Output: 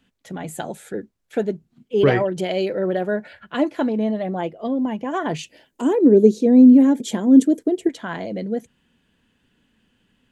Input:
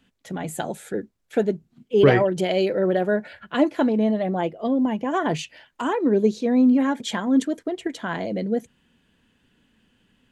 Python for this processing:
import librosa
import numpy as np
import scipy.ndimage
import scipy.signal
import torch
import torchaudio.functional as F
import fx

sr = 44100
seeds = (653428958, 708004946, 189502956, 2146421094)

y = fx.curve_eq(x, sr, hz=(110.0, 300.0, 440.0, 1200.0, 4500.0, 7400.0, 12000.0), db=(0, 10, 8, -8, -1, 5, 8), at=(5.43, 7.89))
y = y * librosa.db_to_amplitude(-1.0)